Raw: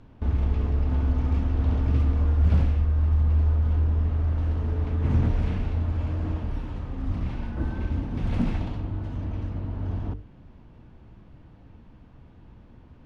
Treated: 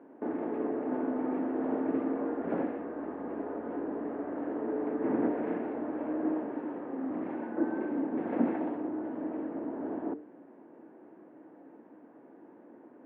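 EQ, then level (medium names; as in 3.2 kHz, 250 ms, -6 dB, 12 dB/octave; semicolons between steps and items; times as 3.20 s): elliptic band-pass 300–1700 Hz, stop band 60 dB; peaking EQ 1.3 kHz -10.5 dB 1.4 oct; +9.0 dB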